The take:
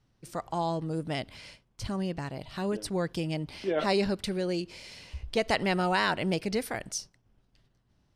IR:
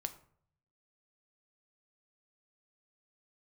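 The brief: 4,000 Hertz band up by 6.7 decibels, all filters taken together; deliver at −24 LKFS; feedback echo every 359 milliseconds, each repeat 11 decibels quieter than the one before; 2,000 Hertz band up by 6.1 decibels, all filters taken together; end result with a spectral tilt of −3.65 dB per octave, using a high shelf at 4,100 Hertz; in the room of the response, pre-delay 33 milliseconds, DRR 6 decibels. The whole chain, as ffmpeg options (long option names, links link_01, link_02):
-filter_complex "[0:a]equalizer=frequency=2000:width_type=o:gain=5.5,equalizer=frequency=4000:width_type=o:gain=3.5,highshelf=frequency=4100:gain=5.5,aecho=1:1:359|718|1077:0.282|0.0789|0.0221,asplit=2[link_01][link_02];[1:a]atrim=start_sample=2205,adelay=33[link_03];[link_02][link_03]afir=irnorm=-1:irlink=0,volume=-5dB[link_04];[link_01][link_04]amix=inputs=2:normalize=0,volume=3.5dB"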